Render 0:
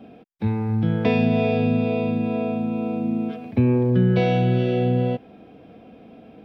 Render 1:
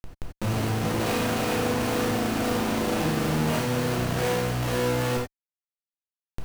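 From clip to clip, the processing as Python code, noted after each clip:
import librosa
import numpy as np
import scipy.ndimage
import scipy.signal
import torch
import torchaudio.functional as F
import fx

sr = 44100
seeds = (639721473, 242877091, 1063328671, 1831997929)

y = fx.echo_pitch(x, sr, ms=173, semitones=4, count=3, db_per_echo=-6.0)
y = fx.schmitt(y, sr, flips_db=-35.0)
y = fx.rev_gated(y, sr, seeds[0], gate_ms=110, shape='flat', drr_db=-2.0)
y = F.gain(torch.from_numpy(y), -8.0).numpy()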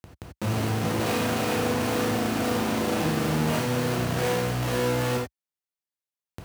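y = scipy.signal.sosfilt(scipy.signal.butter(4, 61.0, 'highpass', fs=sr, output='sos'), x)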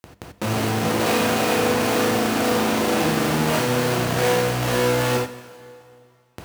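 y = fx.low_shelf(x, sr, hz=130.0, db=-9.0)
y = fx.hum_notches(y, sr, base_hz=50, count=4)
y = fx.rev_plate(y, sr, seeds[1], rt60_s=2.4, hf_ratio=0.9, predelay_ms=0, drr_db=13.5)
y = F.gain(torch.from_numpy(y), 6.5).numpy()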